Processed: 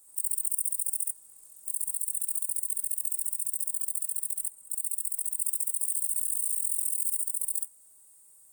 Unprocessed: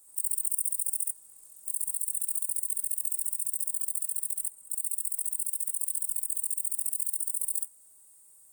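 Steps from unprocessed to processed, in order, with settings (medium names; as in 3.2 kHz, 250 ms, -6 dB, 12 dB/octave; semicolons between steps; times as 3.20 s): 5.02–7.22 s: chunks repeated in reverse 390 ms, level -2 dB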